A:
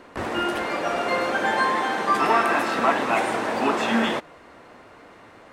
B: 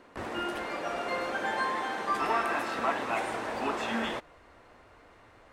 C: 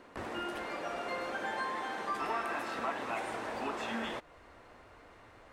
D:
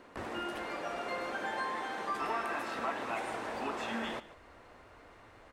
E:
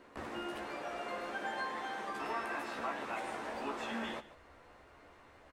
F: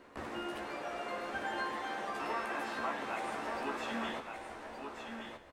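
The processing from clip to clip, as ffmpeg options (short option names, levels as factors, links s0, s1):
-af "asubboost=boost=5.5:cutoff=78,volume=0.376"
-af "acompressor=threshold=0.00708:ratio=1.5"
-af "aecho=1:1:144:0.158"
-filter_complex "[0:a]asplit=2[s0][s1];[s1]adelay=14,volume=0.562[s2];[s0][s2]amix=inputs=2:normalize=0,volume=0.631"
-af "aecho=1:1:1171:0.473,volume=1.12"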